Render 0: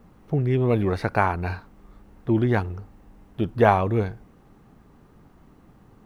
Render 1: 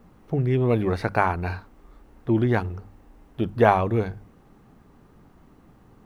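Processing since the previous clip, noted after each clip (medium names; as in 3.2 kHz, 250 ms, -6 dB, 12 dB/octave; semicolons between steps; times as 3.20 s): hum notches 50/100/150/200 Hz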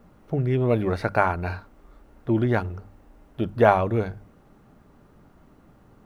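small resonant body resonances 600/1400 Hz, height 7 dB; trim -1 dB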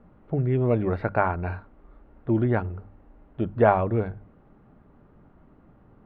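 distance through air 480 m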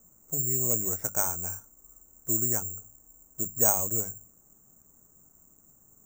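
careless resampling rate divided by 6×, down none, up zero stuff; trim -12.5 dB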